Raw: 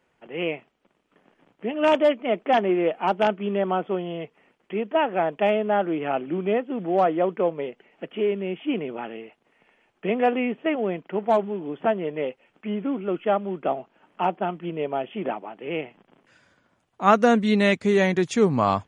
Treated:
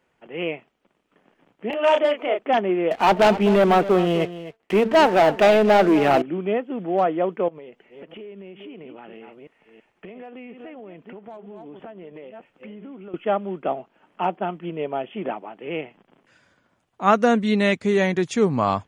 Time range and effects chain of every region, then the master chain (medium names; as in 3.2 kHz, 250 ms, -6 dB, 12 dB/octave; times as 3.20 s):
1.70–2.39 s: high-pass 360 Hz 24 dB/octave + upward compressor, threshold -20 dBFS + doubling 31 ms -4 dB
2.91–6.22 s: de-hum 224.4 Hz, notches 4 + waveshaping leveller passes 3 + delay 256 ms -14 dB
7.48–13.14 s: chunks repeated in reverse 332 ms, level -13 dB + compression 10:1, threshold -36 dBFS
whole clip: none